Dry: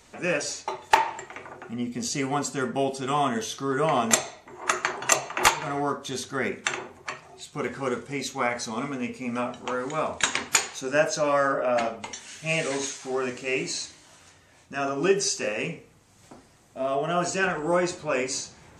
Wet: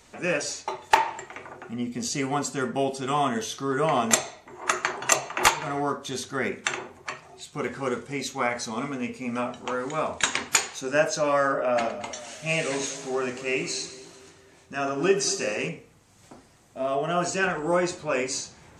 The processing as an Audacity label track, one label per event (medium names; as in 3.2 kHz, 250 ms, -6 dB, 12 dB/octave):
11.640000	15.690000	two-band feedback delay split 1.4 kHz, lows 231 ms, highs 112 ms, level -14 dB